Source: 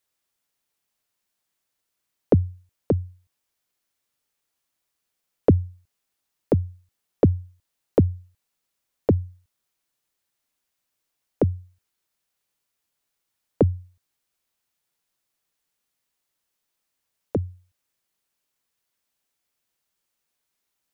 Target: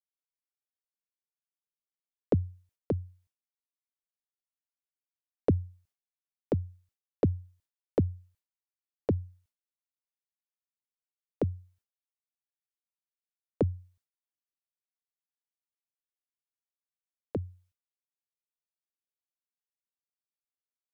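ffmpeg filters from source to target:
-af "agate=range=-33dB:threshold=-54dB:ratio=3:detection=peak,volume=-8.5dB"

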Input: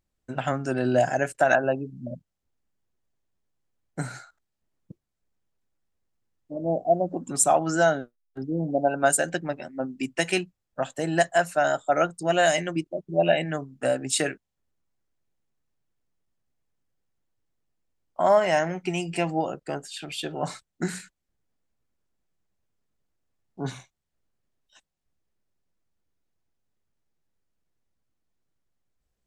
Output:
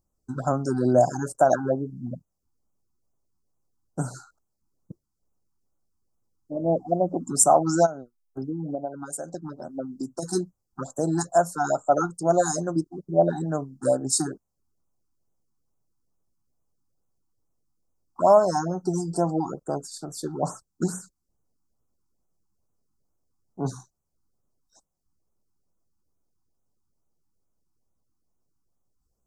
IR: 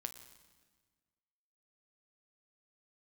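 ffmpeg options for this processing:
-filter_complex "[0:a]asplit=3[a][b][c];[a]afade=t=out:st=7.85:d=0.02[d];[b]acompressor=threshold=-30dB:ratio=16,afade=t=in:st=7.85:d=0.02,afade=t=out:st=10.22:d=0.02[e];[c]afade=t=in:st=10.22:d=0.02[f];[d][e][f]amix=inputs=3:normalize=0,asuperstop=centerf=2500:order=8:qfactor=0.75,afftfilt=real='re*(1-between(b*sr/1024,490*pow(4200/490,0.5+0.5*sin(2*PI*2.3*pts/sr))/1.41,490*pow(4200/490,0.5+0.5*sin(2*PI*2.3*pts/sr))*1.41))':imag='im*(1-between(b*sr/1024,490*pow(4200/490,0.5+0.5*sin(2*PI*2.3*pts/sr))/1.41,490*pow(4200/490,0.5+0.5*sin(2*PI*2.3*pts/sr))*1.41))':win_size=1024:overlap=0.75,volume=3dB"

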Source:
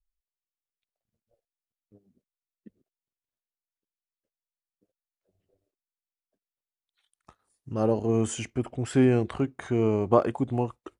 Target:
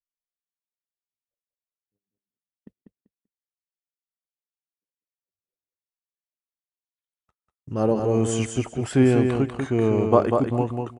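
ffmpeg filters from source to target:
-af "agate=range=-33dB:threshold=-49dB:ratio=16:detection=peak,aecho=1:1:194|388|582:0.562|0.112|0.0225,volume=3dB"

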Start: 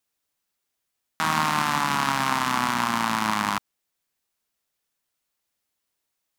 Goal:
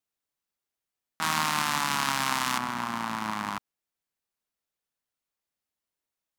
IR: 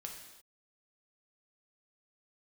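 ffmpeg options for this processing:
-af "asetnsamples=n=441:p=0,asendcmd='1.22 highshelf g 8.5;2.58 highshelf g -4',highshelf=f=2.1k:g=-3.5,volume=-6.5dB"

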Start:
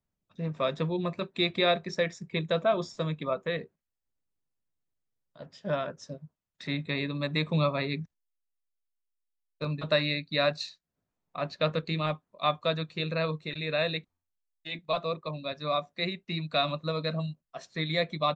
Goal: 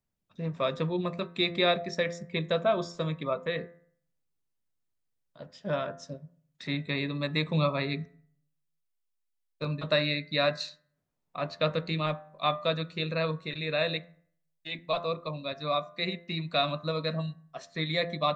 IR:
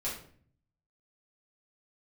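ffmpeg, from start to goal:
-filter_complex "[0:a]bandreject=f=85.82:t=h:w=4,bandreject=f=171.64:t=h:w=4,bandreject=f=257.46:t=h:w=4,bandreject=f=343.28:t=h:w=4,bandreject=f=429.1:t=h:w=4,bandreject=f=514.92:t=h:w=4,bandreject=f=600.74:t=h:w=4,bandreject=f=686.56:t=h:w=4,bandreject=f=772.38:t=h:w=4,bandreject=f=858.2:t=h:w=4,bandreject=f=944.02:t=h:w=4,bandreject=f=1.02984k:t=h:w=4,bandreject=f=1.11566k:t=h:w=4,bandreject=f=1.20148k:t=h:w=4,bandreject=f=1.2873k:t=h:w=4,bandreject=f=1.37312k:t=h:w=4,bandreject=f=1.45894k:t=h:w=4,bandreject=f=1.54476k:t=h:w=4,bandreject=f=1.63058k:t=h:w=4,bandreject=f=1.7164k:t=h:w=4,bandreject=f=1.80222k:t=h:w=4,bandreject=f=1.88804k:t=h:w=4,bandreject=f=1.97386k:t=h:w=4,bandreject=f=2.05968k:t=h:w=4,asplit=2[a][b];[1:a]atrim=start_sample=2205[c];[b][c]afir=irnorm=-1:irlink=0,volume=-25dB[d];[a][d]amix=inputs=2:normalize=0"

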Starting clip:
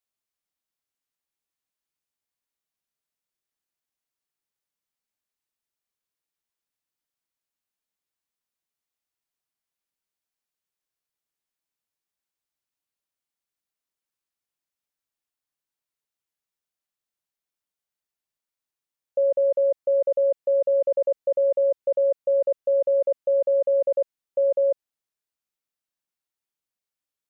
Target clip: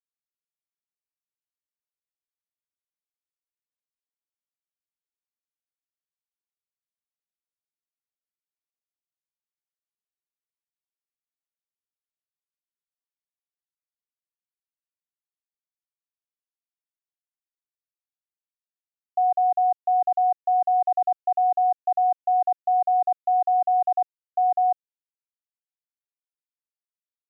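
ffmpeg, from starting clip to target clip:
-af "afreqshift=180,aeval=exprs='val(0)*gte(abs(val(0)),0.00168)':c=same"

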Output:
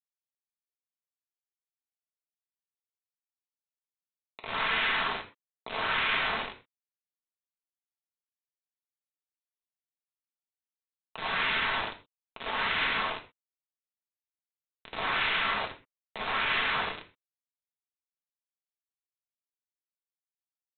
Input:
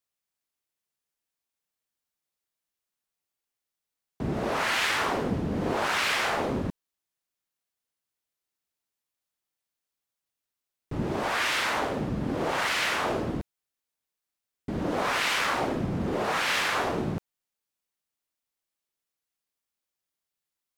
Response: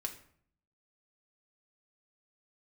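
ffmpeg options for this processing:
-filter_complex "[0:a]highpass=870,aresample=8000,acrusher=bits=4:mix=0:aa=0.000001,aresample=44100[a];[1:a]atrim=start_sample=2205,afade=t=out:st=0.18:d=0.01,atrim=end_sample=8379[b];[a][b]afir=irnorm=-1:irlink=0,volume=-1dB"

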